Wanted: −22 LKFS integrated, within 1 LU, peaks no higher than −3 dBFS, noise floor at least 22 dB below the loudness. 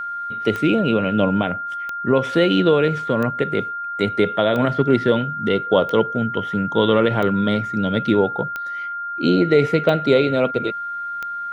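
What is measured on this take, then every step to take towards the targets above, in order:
number of clicks 9; interfering tone 1,400 Hz; level of the tone −25 dBFS; integrated loudness −19.5 LKFS; sample peak −3.5 dBFS; target loudness −22.0 LKFS
→ click removal
notch filter 1,400 Hz, Q 30
level −2.5 dB

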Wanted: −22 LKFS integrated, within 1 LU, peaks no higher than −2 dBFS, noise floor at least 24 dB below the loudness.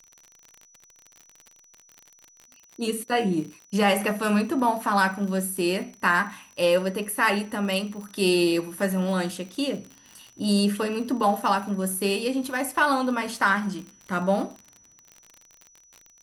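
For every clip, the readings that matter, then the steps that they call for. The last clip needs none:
crackle rate 48 per second; interfering tone 5,900 Hz; level of the tone −54 dBFS; integrated loudness −25.0 LKFS; sample peak −8.0 dBFS; target loudness −22.0 LKFS
→ click removal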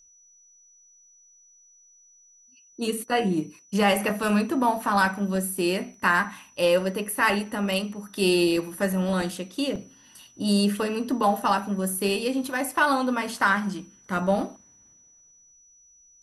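crackle rate 0.18 per second; interfering tone 5,900 Hz; level of the tone −54 dBFS
→ notch filter 5,900 Hz, Q 30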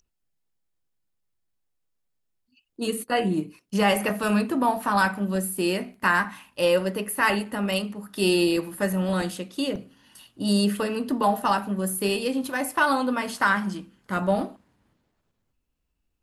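interfering tone none found; integrated loudness −25.0 LKFS; sample peak −8.0 dBFS; target loudness −22.0 LKFS
→ level +3 dB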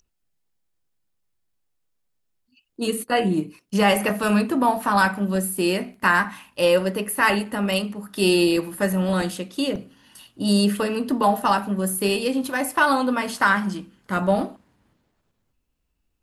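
integrated loudness −22.0 LKFS; sample peak −5.0 dBFS; background noise floor −74 dBFS

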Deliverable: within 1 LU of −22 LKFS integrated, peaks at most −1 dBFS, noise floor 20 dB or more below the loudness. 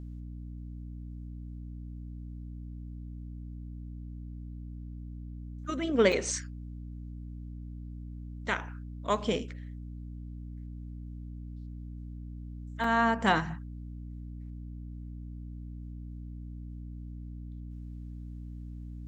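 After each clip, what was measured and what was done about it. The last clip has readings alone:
number of dropouts 2; longest dropout 3.6 ms; mains hum 60 Hz; hum harmonics up to 300 Hz; level of the hum −39 dBFS; integrated loudness −36.5 LKFS; sample peak −10.5 dBFS; target loudness −22.0 LKFS
→ repair the gap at 0:06.12/0:12.84, 3.6 ms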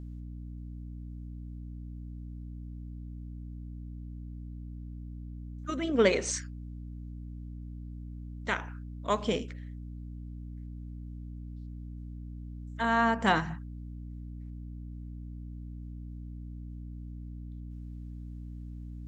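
number of dropouts 0; mains hum 60 Hz; hum harmonics up to 300 Hz; level of the hum −39 dBFS
→ mains-hum notches 60/120/180/240/300 Hz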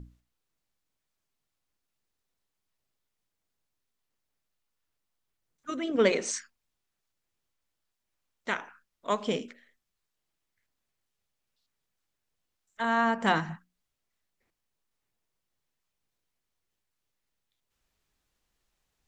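mains hum none found; integrated loudness −29.0 LKFS; sample peak −10.5 dBFS; target loudness −22.0 LKFS
→ level +7 dB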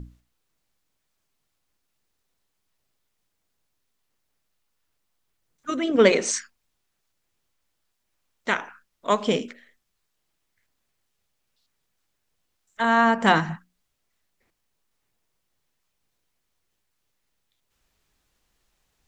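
integrated loudness −22.0 LKFS; sample peak −3.5 dBFS; background noise floor −77 dBFS

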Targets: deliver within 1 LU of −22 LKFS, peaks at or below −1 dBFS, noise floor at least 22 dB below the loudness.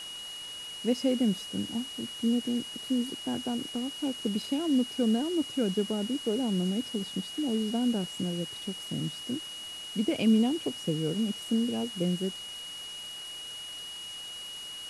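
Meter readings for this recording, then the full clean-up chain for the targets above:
interfering tone 2,900 Hz; level of the tone −39 dBFS; background noise floor −41 dBFS; target noise floor −53 dBFS; integrated loudness −31.0 LKFS; sample peak −14.5 dBFS; target loudness −22.0 LKFS
→ notch filter 2,900 Hz, Q 30
broadband denoise 12 dB, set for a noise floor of −41 dBFS
level +9 dB

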